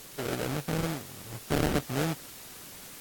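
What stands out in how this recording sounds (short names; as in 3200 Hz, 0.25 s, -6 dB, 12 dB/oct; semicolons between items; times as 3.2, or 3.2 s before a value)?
aliases and images of a low sample rate 1000 Hz, jitter 20%; tremolo saw down 0.77 Hz, depth 30%; a quantiser's noise floor 8-bit, dither triangular; AAC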